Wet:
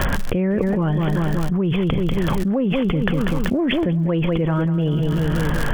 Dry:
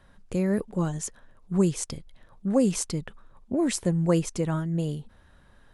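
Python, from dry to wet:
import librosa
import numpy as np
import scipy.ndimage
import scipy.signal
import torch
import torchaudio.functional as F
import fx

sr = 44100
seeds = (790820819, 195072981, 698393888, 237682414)

p1 = fx.brickwall_lowpass(x, sr, high_hz=3500.0)
p2 = fx.dmg_crackle(p1, sr, seeds[0], per_s=91.0, level_db=-49.0)
p3 = 10.0 ** (-23.0 / 20.0) * np.tanh(p2 / 10.0 ** (-23.0 / 20.0))
p4 = p2 + (p3 * 10.0 ** (-11.5 / 20.0))
p5 = fx.echo_feedback(p4, sr, ms=192, feedback_pct=44, wet_db=-12.5)
p6 = fx.env_flatten(p5, sr, amount_pct=100)
y = p6 * 10.0 ** (-2.0 / 20.0)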